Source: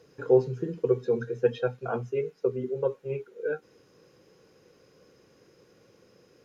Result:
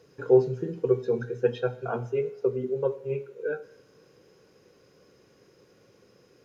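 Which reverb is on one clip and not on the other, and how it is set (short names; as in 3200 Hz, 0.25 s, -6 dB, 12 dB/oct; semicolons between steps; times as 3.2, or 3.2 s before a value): two-slope reverb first 0.54 s, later 2.9 s, from -19 dB, DRR 12 dB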